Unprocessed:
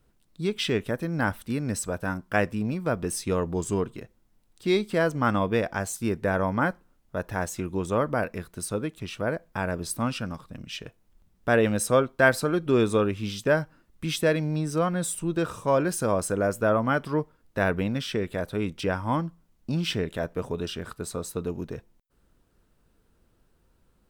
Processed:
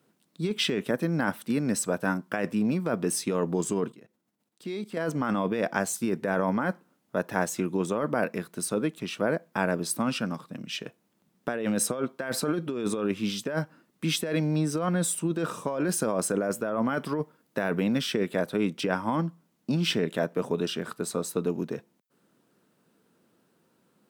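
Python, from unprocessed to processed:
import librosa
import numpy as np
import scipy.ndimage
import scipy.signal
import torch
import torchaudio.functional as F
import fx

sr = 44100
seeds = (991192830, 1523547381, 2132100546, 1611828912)

y = fx.level_steps(x, sr, step_db=18, at=(3.92, 4.97))
y = fx.high_shelf(y, sr, hz=8800.0, db=4.5, at=(16.89, 18.29))
y = scipy.signal.sosfilt(scipy.signal.butter(4, 170.0, 'highpass', fs=sr, output='sos'), y)
y = fx.low_shelf(y, sr, hz=240.0, db=4.5)
y = fx.over_compress(y, sr, threshold_db=-26.0, ratio=-1.0)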